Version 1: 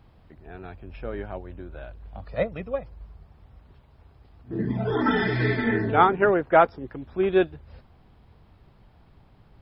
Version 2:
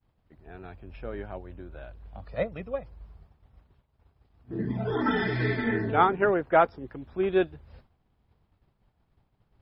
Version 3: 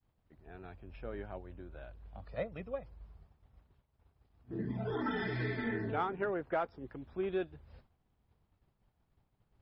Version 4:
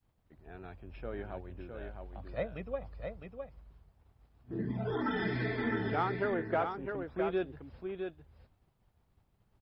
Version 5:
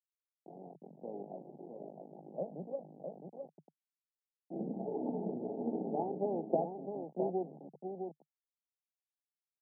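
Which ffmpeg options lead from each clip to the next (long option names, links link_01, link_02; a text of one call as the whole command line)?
ffmpeg -i in.wav -af "agate=range=-33dB:threshold=-45dB:ratio=3:detection=peak,volume=-3.5dB" out.wav
ffmpeg -i in.wav -filter_complex "[0:a]asplit=2[link_01][link_02];[link_02]asoftclip=type=tanh:threshold=-17dB,volume=-7.5dB[link_03];[link_01][link_03]amix=inputs=2:normalize=0,acompressor=threshold=-24dB:ratio=2.5,volume=-9dB" out.wav
ffmpeg -i in.wav -af "aecho=1:1:659:0.501,volume=2dB" out.wav
ffmpeg -i in.wav -af "acrusher=bits=5:dc=4:mix=0:aa=0.000001,asuperpass=centerf=350:order=20:qfactor=0.52,volume=2.5dB" out.wav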